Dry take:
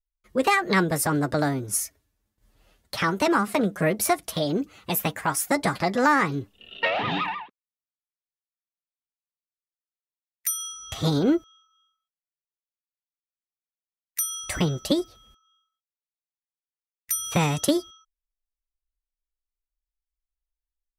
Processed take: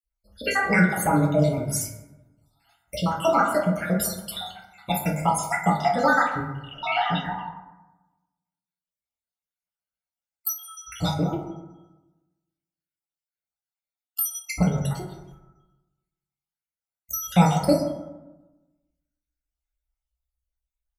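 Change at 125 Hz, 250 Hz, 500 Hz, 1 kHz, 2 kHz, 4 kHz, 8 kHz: +4.0, 0.0, +0.5, +2.0, +0.5, -2.5, -3.0 dB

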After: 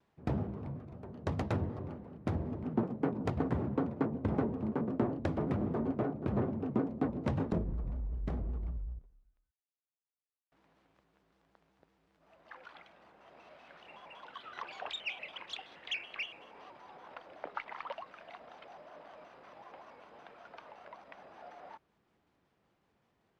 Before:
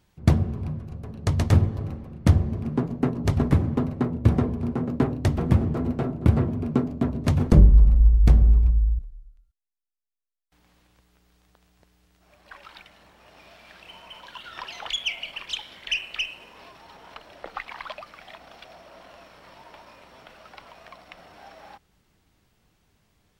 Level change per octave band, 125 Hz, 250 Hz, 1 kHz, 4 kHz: -16.5, -9.0, -5.5, -13.0 dB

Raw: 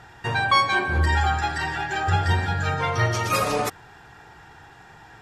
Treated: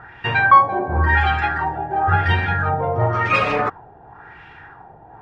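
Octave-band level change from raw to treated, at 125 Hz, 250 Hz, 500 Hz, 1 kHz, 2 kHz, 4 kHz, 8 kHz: +2.5 dB, +3.0 dB, +5.0 dB, +6.5 dB, +5.0 dB, -3.0 dB, under -15 dB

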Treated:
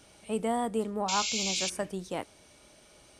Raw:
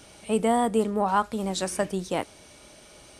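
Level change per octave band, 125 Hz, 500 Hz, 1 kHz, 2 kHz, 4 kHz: -7.0, -7.0, -7.0, -2.0, +5.0 dB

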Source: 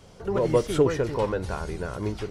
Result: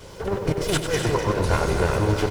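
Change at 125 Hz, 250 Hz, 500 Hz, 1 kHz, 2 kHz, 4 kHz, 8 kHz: +6.5, +2.5, +0.5, +6.0, +9.0, +10.0, +10.0 dB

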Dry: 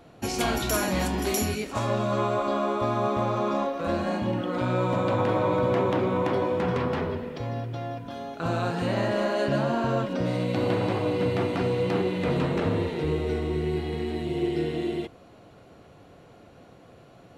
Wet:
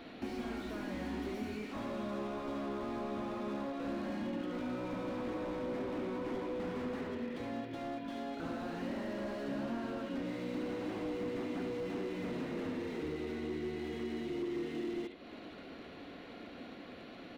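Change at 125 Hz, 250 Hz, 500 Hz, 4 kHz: -19.0, -9.0, -13.5, -14.0 dB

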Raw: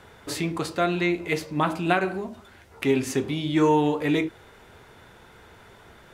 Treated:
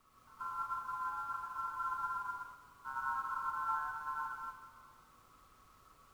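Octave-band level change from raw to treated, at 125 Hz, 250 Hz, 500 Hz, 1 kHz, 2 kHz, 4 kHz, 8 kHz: under -30 dB, under -40 dB, under -40 dB, -7.5 dB, -14.0 dB, under -25 dB, under -20 dB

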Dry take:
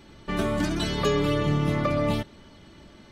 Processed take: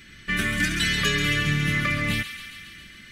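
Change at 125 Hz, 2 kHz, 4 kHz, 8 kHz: 0.0, +12.5, +8.0, +9.0 dB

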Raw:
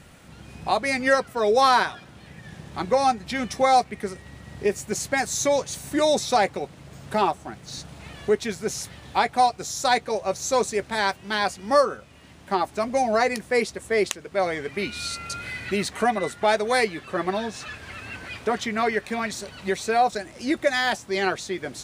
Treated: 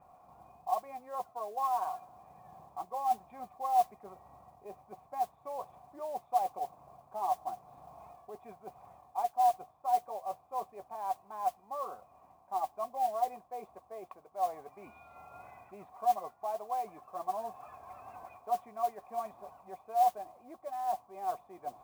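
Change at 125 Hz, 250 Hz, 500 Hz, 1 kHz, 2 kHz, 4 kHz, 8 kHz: under -20 dB, -27.0 dB, -16.5 dB, -8.0 dB, under -30 dB, under -25 dB, -23.5 dB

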